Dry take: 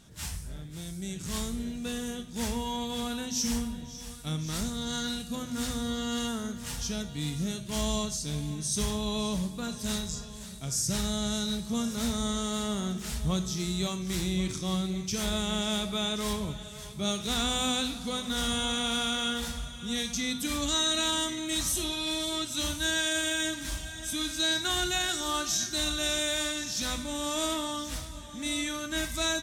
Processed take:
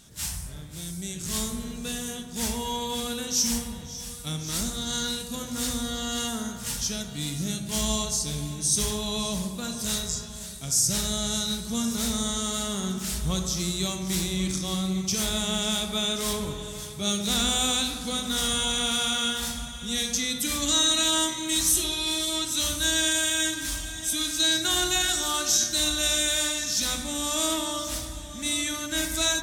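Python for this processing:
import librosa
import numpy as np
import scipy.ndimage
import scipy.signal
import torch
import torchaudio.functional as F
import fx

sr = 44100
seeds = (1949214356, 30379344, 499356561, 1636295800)

p1 = fx.high_shelf(x, sr, hz=3600.0, db=9.5)
y = p1 + fx.echo_wet_lowpass(p1, sr, ms=69, feedback_pct=77, hz=1500.0, wet_db=-8, dry=0)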